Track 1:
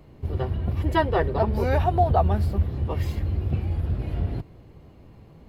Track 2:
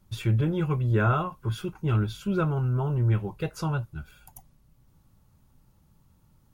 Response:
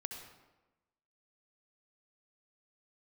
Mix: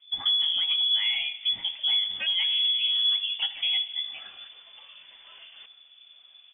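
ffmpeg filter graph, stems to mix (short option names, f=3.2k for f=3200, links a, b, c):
-filter_complex "[0:a]acompressor=threshold=-23dB:ratio=6,highpass=700,acrossover=split=1300[a][b];[a]aeval=exprs='val(0)*(1-0.5/2+0.5/2*cos(2*PI*1.9*n/s))':c=same[c];[b]aeval=exprs='val(0)*(1-0.5/2-0.5/2*cos(2*PI*1.9*n/s))':c=same[d];[c][d]amix=inputs=2:normalize=0,adelay=1250,volume=-1dB,asplit=2[e][f];[f]volume=-19dB[g];[1:a]lowshelf=f=110:g=9.5,acompressor=threshold=-23dB:ratio=4,volume=-3.5dB,asplit=3[h][i][j];[i]volume=-3dB[k];[j]apad=whole_len=297154[l];[e][l]sidechaincompress=threshold=-40dB:ratio=10:attack=16:release=121[m];[2:a]atrim=start_sample=2205[n];[k][n]afir=irnorm=-1:irlink=0[o];[g]aecho=0:1:84:1[p];[m][h][o][p]amix=inputs=4:normalize=0,lowpass=f=3k:t=q:w=0.5098,lowpass=f=3k:t=q:w=0.6013,lowpass=f=3k:t=q:w=0.9,lowpass=f=3k:t=q:w=2.563,afreqshift=-3500"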